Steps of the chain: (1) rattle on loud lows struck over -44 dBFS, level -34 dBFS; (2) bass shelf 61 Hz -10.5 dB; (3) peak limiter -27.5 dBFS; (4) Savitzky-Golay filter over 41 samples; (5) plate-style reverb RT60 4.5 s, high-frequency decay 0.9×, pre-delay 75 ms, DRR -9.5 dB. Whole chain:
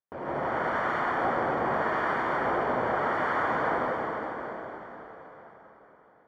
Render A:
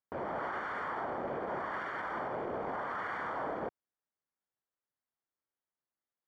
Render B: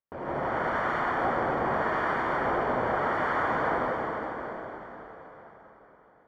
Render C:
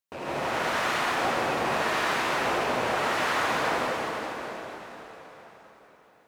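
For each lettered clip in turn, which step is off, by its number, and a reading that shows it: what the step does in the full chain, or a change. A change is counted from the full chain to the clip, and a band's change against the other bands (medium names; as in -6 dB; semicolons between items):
5, momentary loudness spread change -13 LU; 2, 125 Hz band +2.0 dB; 4, 4 kHz band +15.0 dB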